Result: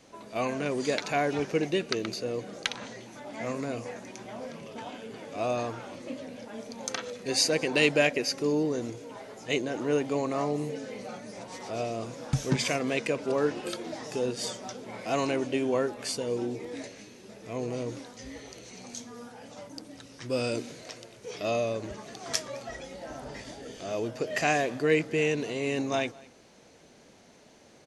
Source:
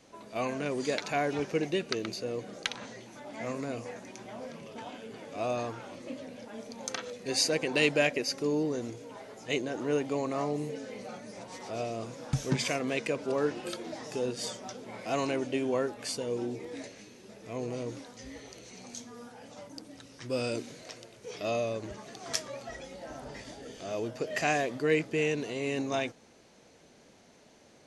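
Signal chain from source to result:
slap from a distant wall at 36 metres, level −23 dB
level +2.5 dB

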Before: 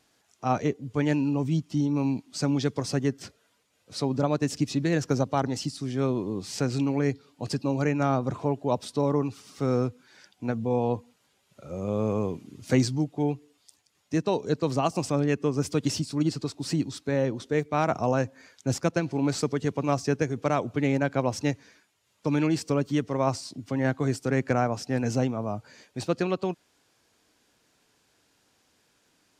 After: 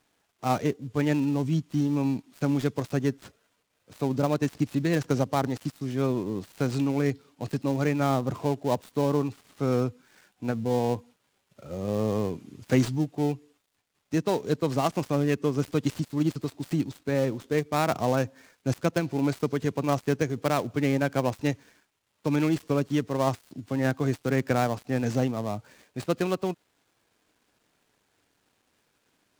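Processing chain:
gap after every zero crossing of 0.12 ms

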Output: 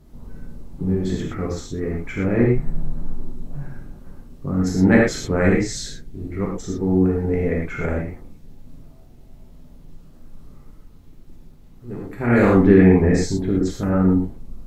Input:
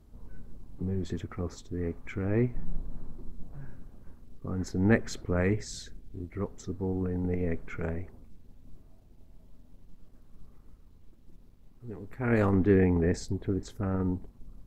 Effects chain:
reverb whose tail is shaped and stops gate 140 ms flat, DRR −3 dB
level +6.5 dB

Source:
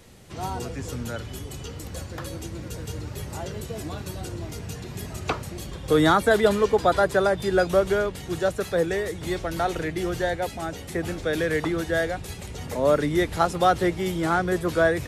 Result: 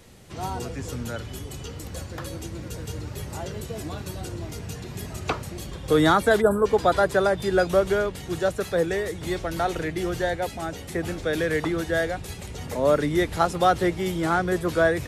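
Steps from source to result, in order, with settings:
gain on a spectral selection 0:06.41–0:06.66, 1,700–7,500 Hz −26 dB

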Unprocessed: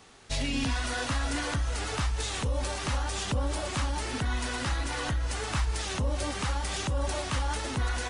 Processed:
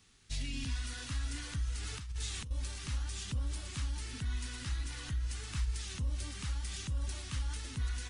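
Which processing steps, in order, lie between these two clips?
0:01.83–0:02.51: compressor whose output falls as the input rises −31 dBFS, ratio −0.5
guitar amp tone stack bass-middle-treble 6-0-2
level +7 dB

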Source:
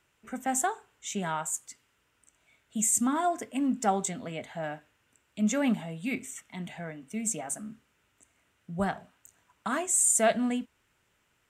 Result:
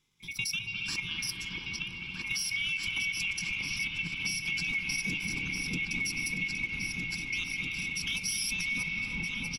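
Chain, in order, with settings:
neighbouring bands swapped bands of 2,000 Hz
low-shelf EQ 180 Hz +8.5 dB
echo whose low-pass opens from repeat to repeat 761 ms, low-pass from 750 Hz, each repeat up 2 octaves, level 0 dB
output level in coarse steps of 10 dB
graphic EQ with 15 bands 160 Hz +12 dB, 630 Hz −9 dB, 6,300 Hz +9 dB
tempo change 1.2×
brickwall limiter −21.5 dBFS, peak gain reduction 9.5 dB
convolution reverb RT60 3.0 s, pre-delay 195 ms, DRR 1.5 dB
downward compressor 2.5 to 1, threshold −34 dBFS, peak gain reduction 6.5 dB
Butterworth band-reject 650 Hz, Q 2.4
level +2.5 dB

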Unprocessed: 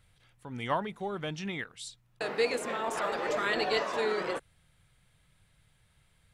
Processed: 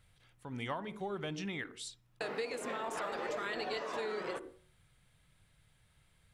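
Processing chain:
on a send at −18 dB: low shelf with overshoot 510 Hz +11.5 dB, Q 1.5 + convolution reverb RT60 0.45 s, pre-delay 55 ms
on the sum: downward compressor 5 to 1, threshold −33 dBFS, peak gain reduction 10 dB
level −2 dB

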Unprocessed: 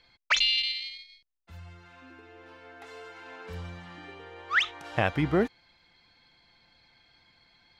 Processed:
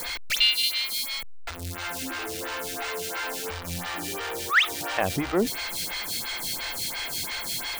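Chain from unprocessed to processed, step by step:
converter with a step at zero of −27 dBFS
high-shelf EQ 2,500 Hz +8 dB
phaser with staggered stages 2.9 Hz

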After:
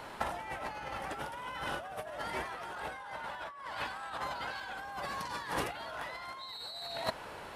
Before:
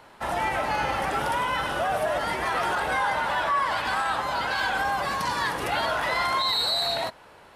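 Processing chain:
compressor whose output falls as the input rises −33 dBFS, ratio −0.5
level −4.5 dB

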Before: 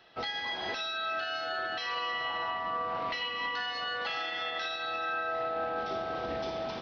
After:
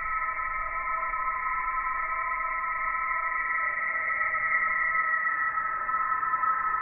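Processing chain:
notch filter 1,900 Hz, Q 25
extreme stretch with random phases 9.9×, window 0.05 s, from 0:04.98
high-pass filter sweep 340 Hz → 1,100 Hz, 0:04.33–0:05.79
in parallel at −10 dB: bit-depth reduction 6 bits, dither none
on the sum: voice inversion scrambler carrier 2,600 Hz

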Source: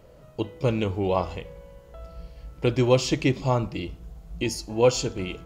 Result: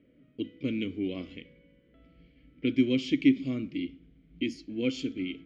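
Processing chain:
low-pass that shuts in the quiet parts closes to 2,000 Hz, open at −21.5 dBFS
formant filter i
low-shelf EQ 62 Hz +6.5 dB
level +6.5 dB

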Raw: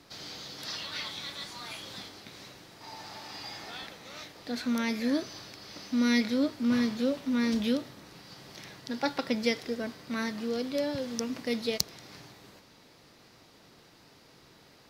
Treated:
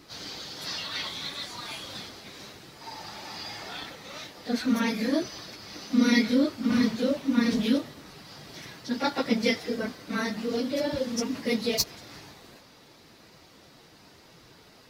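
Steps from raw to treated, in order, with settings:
random phases in long frames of 50 ms
level +3.5 dB

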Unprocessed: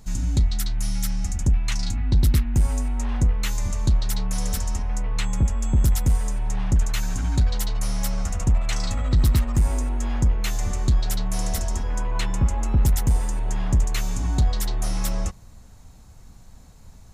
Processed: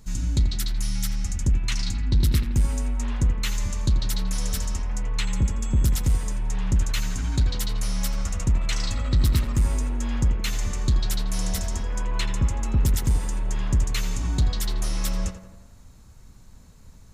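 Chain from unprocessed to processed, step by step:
parametric band 740 Hz −7.5 dB 0.38 octaves
on a send: tape delay 84 ms, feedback 66%, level −8 dB, low-pass 2,800 Hz
on the sum: dynamic equaliser 3,600 Hz, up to +4 dB, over −46 dBFS, Q 0.87
level −2 dB

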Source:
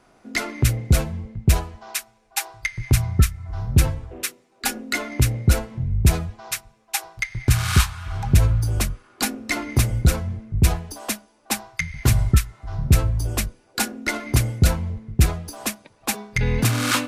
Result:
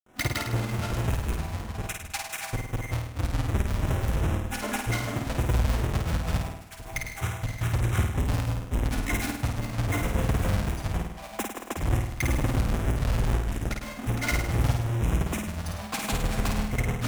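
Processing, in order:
each half-wave held at its own peak
brickwall limiter −16.5 dBFS, peak gain reduction 48 dB
auto-filter notch square 1.6 Hz 370–4,500 Hz
granular cloud, spray 434 ms
on a send: flutter between parallel walls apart 8.9 metres, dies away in 0.72 s
on the sum: level −4 dB

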